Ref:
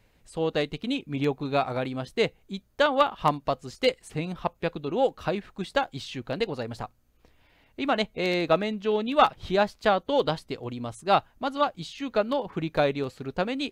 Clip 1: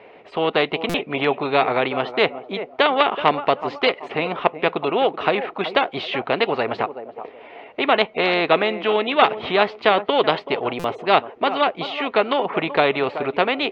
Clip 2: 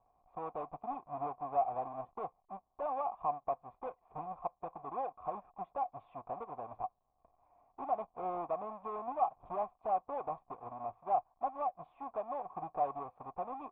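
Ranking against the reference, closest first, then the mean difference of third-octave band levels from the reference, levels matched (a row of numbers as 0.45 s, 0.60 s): 1, 2; 7.5 dB, 10.5 dB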